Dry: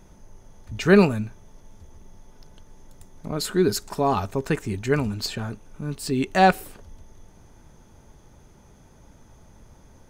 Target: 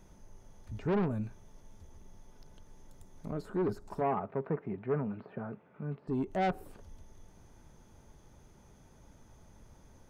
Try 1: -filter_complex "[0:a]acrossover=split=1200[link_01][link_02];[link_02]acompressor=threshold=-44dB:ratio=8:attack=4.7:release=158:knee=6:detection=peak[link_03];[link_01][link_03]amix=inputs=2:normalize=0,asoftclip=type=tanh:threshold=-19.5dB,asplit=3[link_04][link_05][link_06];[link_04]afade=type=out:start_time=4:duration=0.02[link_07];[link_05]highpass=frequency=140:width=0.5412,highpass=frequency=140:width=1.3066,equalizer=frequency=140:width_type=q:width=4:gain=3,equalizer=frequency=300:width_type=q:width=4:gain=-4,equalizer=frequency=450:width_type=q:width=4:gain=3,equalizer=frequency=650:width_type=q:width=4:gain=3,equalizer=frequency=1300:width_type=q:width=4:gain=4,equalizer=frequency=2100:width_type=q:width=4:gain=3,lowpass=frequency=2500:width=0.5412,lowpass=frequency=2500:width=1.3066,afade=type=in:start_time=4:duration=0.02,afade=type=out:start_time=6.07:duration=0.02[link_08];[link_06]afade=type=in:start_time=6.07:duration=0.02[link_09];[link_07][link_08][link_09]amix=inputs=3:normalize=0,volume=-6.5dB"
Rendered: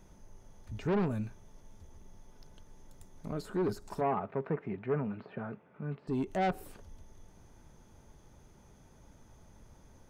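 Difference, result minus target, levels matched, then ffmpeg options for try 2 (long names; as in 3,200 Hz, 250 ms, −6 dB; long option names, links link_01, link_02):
downward compressor: peak gain reduction −8.5 dB
-filter_complex "[0:a]acrossover=split=1200[link_01][link_02];[link_02]acompressor=threshold=-53.5dB:ratio=8:attack=4.7:release=158:knee=6:detection=peak[link_03];[link_01][link_03]amix=inputs=2:normalize=0,asoftclip=type=tanh:threshold=-19.5dB,asplit=3[link_04][link_05][link_06];[link_04]afade=type=out:start_time=4:duration=0.02[link_07];[link_05]highpass=frequency=140:width=0.5412,highpass=frequency=140:width=1.3066,equalizer=frequency=140:width_type=q:width=4:gain=3,equalizer=frequency=300:width_type=q:width=4:gain=-4,equalizer=frequency=450:width_type=q:width=4:gain=3,equalizer=frequency=650:width_type=q:width=4:gain=3,equalizer=frequency=1300:width_type=q:width=4:gain=4,equalizer=frequency=2100:width_type=q:width=4:gain=3,lowpass=frequency=2500:width=0.5412,lowpass=frequency=2500:width=1.3066,afade=type=in:start_time=4:duration=0.02,afade=type=out:start_time=6.07:duration=0.02[link_08];[link_06]afade=type=in:start_time=6.07:duration=0.02[link_09];[link_07][link_08][link_09]amix=inputs=3:normalize=0,volume=-6.5dB"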